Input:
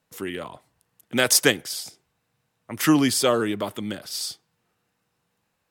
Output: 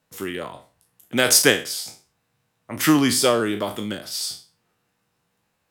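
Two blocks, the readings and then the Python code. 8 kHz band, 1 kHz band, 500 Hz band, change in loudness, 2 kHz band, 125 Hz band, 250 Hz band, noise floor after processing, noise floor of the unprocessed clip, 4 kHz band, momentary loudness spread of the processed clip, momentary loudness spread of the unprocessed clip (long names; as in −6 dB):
+3.0 dB, +2.0 dB, +2.0 dB, +2.5 dB, +2.5 dB, +1.5 dB, +1.5 dB, −73 dBFS, −75 dBFS, +3.0 dB, 20 LU, 17 LU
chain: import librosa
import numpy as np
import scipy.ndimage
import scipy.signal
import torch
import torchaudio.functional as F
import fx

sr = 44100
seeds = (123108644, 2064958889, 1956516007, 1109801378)

y = fx.spec_trails(x, sr, decay_s=0.35)
y = y * librosa.db_to_amplitude(1.0)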